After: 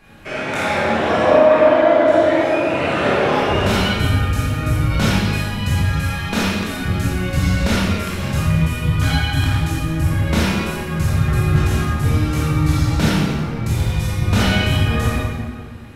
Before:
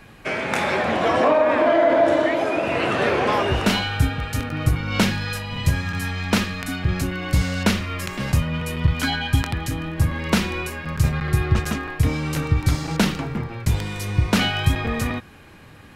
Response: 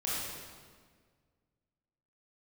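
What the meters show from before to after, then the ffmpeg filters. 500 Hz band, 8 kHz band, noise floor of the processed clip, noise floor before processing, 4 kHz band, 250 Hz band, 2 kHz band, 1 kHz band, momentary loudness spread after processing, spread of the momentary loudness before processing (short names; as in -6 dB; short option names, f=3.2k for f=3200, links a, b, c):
+5.0 dB, +2.0 dB, -27 dBFS, -45 dBFS, +2.5 dB, +4.0 dB, +2.5 dB, +3.0 dB, 9 LU, 9 LU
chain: -filter_complex "[1:a]atrim=start_sample=2205,asetrate=48510,aresample=44100[a];[0:a][a]afir=irnorm=-1:irlink=0,volume=-2dB"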